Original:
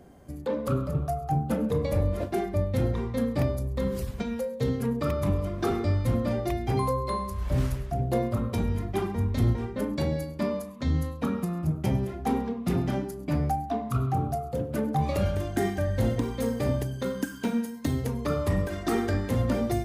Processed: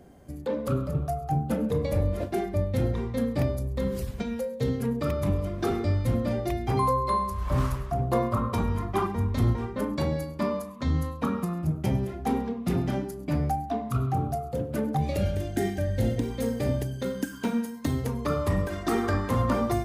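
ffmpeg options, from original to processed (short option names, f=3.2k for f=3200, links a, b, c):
-af "asetnsamples=n=441:p=0,asendcmd='6.67 equalizer g 6.5;7.47 equalizer g 14;9.07 equalizer g 6.5;11.54 equalizer g -1;14.97 equalizer g -12.5;16.3 equalizer g -5.5;17.33 equalizer g 4;19.04 equalizer g 13',equalizer=f=1.1k:t=o:w=0.6:g=-2.5"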